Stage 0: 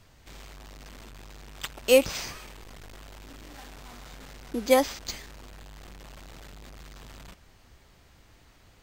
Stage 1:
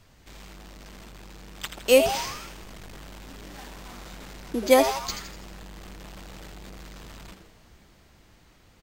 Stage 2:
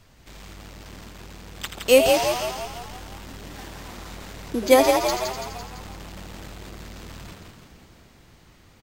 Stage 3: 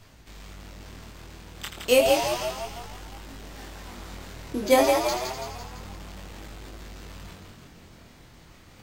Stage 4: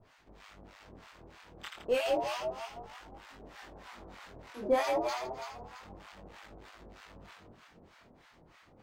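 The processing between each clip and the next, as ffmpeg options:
-filter_complex "[0:a]asplit=2[a][b];[b]asplit=6[c][d][e][f][g][h];[c]adelay=82,afreqshift=140,volume=-9dB[i];[d]adelay=164,afreqshift=280,volume=-14.8dB[j];[e]adelay=246,afreqshift=420,volume=-20.7dB[k];[f]adelay=328,afreqshift=560,volume=-26.5dB[l];[g]adelay=410,afreqshift=700,volume=-32.4dB[m];[h]adelay=492,afreqshift=840,volume=-38.2dB[n];[i][j][k][l][m][n]amix=inputs=6:normalize=0[o];[a][o]amix=inputs=2:normalize=0,dynaudnorm=f=240:g=17:m=3dB"
-filter_complex "[0:a]asplit=8[a][b][c][d][e][f][g][h];[b]adelay=168,afreqshift=39,volume=-5.5dB[i];[c]adelay=336,afreqshift=78,volume=-10.7dB[j];[d]adelay=504,afreqshift=117,volume=-15.9dB[k];[e]adelay=672,afreqshift=156,volume=-21.1dB[l];[f]adelay=840,afreqshift=195,volume=-26.3dB[m];[g]adelay=1008,afreqshift=234,volume=-31.5dB[n];[h]adelay=1176,afreqshift=273,volume=-36.7dB[o];[a][i][j][k][l][m][n][o]amix=inputs=8:normalize=0,volume=2dB"
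-af "areverse,acompressor=mode=upward:threshold=-40dB:ratio=2.5,areverse,flanger=delay=18.5:depth=6.3:speed=0.3"
-filter_complex "[0:a]asplit=2[a][b];[b]highpass=f=720:p=1,volume=15dB,asoftclip=type=tanh:threshold=-6dB[c];[a][c]amix=inputs=2:normalize=0,lowpass=f=1.3k:p=1,volume=-6dB,acrossover=split=800[d][e];[d]aeval=exprs='val(0)*(1-1/2+1/2*cos(2*PI*3.2*n/s))':c=same[f];[e]aeval=exprs='val(0)*(1-1/2-1/2*cos(2*PI*3.2*n/s))':c=same[g];[f][g]amix=inputs=2:normalize=0,volume=-6.5dB"

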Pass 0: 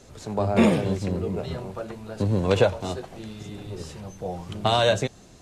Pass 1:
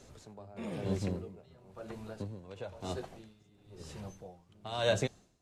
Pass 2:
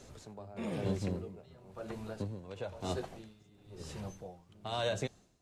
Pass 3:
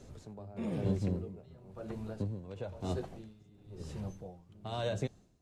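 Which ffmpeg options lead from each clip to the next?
-af "aeval=exprs='val(0)*pow(10,-22*(0.5-0.5*cos(2*PI*1*n/s))/20)':c=same,volume=-5.5dB"
-af "alimiter=level_in=1.5dB:limit=-24dB:level=0:latency=1:release=471,volume=-1.5dB,volume=2dB"
-af "lowshelf=f=490:g=9.5,volume=-5.5dB"

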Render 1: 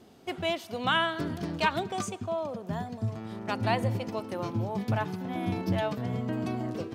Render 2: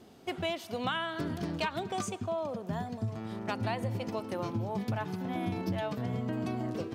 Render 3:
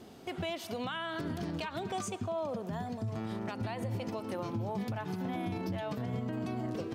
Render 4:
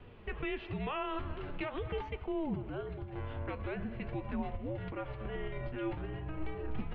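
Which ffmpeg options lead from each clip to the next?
-af "acompressor=threshold=-29dB:ratio=6"
-af "alimiter=level_in=7dB:limit=-24dB:level=0:latency=1:release=123,volume=-7dB,volume=3.5dB"
-af "highpass=f=250:t=q:w=0.5412,highpass=f=250:t=q:w=1.307,lowpass=f=3.3k:t=q:w=0.5176,lowpass=f=3.3k:t=q:w=0.7071,lowpass=f=3.3k:t=q:w=1.932,afreqshift=-310,flanger=delay=4:depth=8.2:regen=69:speed=0.44:shape=sinusoidal,volume=5.5dB"

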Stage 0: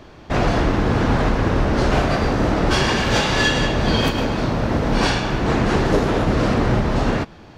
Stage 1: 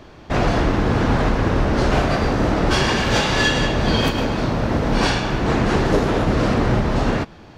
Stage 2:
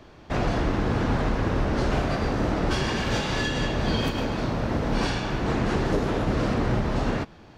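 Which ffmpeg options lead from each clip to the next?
-af anull
-filter_complex "[0:a]acrossover=split=400[a][b];[b]acompressor=threshold=-20dB:ratio=6[c];[a][c]amix=inputs=2:normalize=0,volume=-6dB"

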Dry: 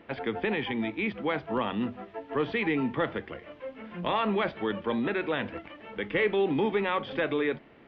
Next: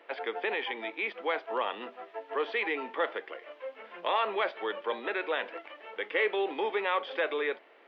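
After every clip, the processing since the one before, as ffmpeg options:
-af "highpass=f=430:w=0.5412,highpass=f=430:w=1.3066"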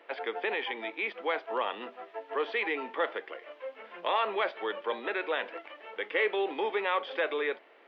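-af anull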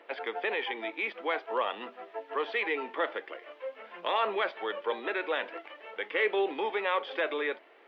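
-af "aphaser=in_gain=1:out_gain=1:delay=3.7:decay=0.23:speed=0.47:type=triangular"

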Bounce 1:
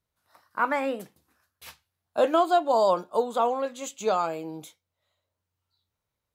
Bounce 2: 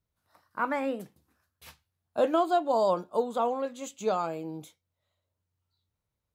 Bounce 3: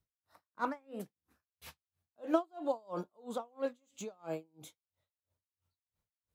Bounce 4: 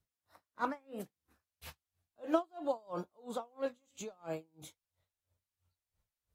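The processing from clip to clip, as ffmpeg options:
-af "lowshelf=f=350:g=8.5,volume=-5.5dB"
-filter_complex "[0:a]acrossover=split=660|1200[a][b][c];[c]asoftclip=type=tanh:threshold=-38dB[d];[a][b][d]amix=inputs=3:normalize=0,aeval=exprs='val(0)*pow(10,-37*(0.5-0.5*cos(2*PI*3*n/s))/20)':c=same"
-af "asubboost=boost=3:cutoff=110" -ar 44100 -c:a aac -b:a 48k

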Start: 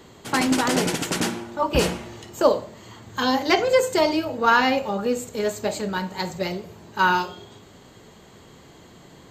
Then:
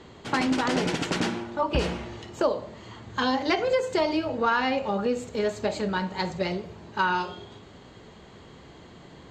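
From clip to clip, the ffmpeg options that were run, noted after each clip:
-af "lowpass=4.8k,equalizer=f=64:w=5:g=7.5,acompressor=threshold=-22dB:ratio=3"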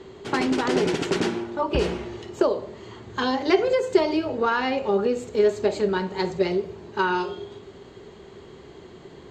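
-af "equalizer=f=390:t=o:w=0.28:g=13.5"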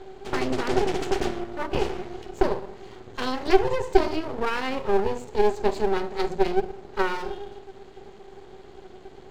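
-af "equalizer=f=380:t=o:w=0.23:g=9,bandreject=f=60:t=h:w=6,bandreject=f=120:t=h:w=6,bandreject=f=180:t=h:w=6,bandreject=f=240:t=h:w=6,bandreject=f=300:t=h:w=6,bandreject=f=360:t=h:w=6,aeval=exprs='max(val(0),0)':c=same,volume=-1dB"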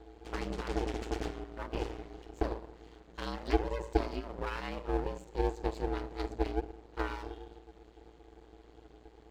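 -af "aeval=exprs='val(0)*sin(2*PI*57*n/s)':c=same,volume=-8.5dB"

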